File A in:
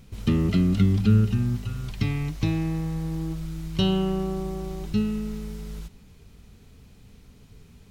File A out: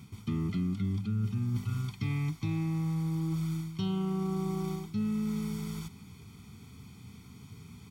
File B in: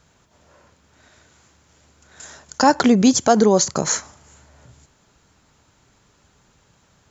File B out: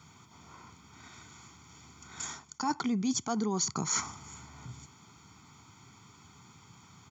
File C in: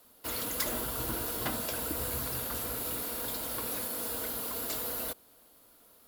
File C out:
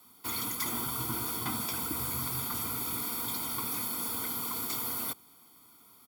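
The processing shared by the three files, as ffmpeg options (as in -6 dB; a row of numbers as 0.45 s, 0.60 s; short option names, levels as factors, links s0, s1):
-af "highpass=f=91:w=0.5412,highpass=f=91:w=1.3066,aecho=1:1:0.9:0.9,areverse,acompressor=threshold=0.0355:ratio=8,areverse"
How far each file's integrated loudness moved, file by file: -7.5 LU, -16.0 LU, +1.0 LU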